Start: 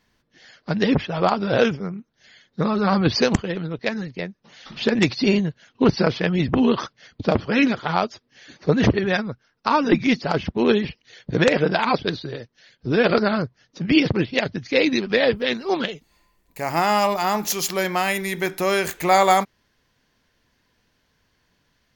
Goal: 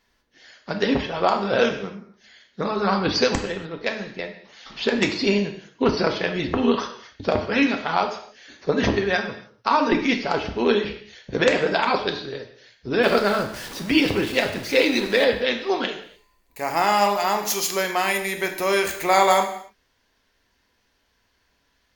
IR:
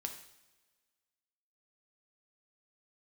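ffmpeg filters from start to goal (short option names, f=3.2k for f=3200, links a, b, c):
-filter_complex "[0:a]asettb=1/sr,asplit=3[a][b][c];[a]atrim=end=13.034[d];[b]atrim=start=13.03:end=15.24,asetpts=PTS-STARTPTS,afade=t=in:d=0.004:c=qsin,afade=t=out:st=2.206:d=0.004:c=qsin,aeval=exprs='val(0)+0.5*0.0335*sgn(val(0))':c=same[e];[c]atrim=start=15.236[f];[d][e]acrossfade=d=0.004:c1=hsin:c2=qsin[g];[g][f]acrossfade=d=0.004:c1=qsin:c2=hsin,equalizer=f=160:w=1.5:g=-12[h];[1:a]atrim=start_sample=2205,afade=t=out:st=0.35:d=0.01,atrim=end_sample=15876[i];[h][i]afir=irnorm=-1:irlink=0,volume=2dB"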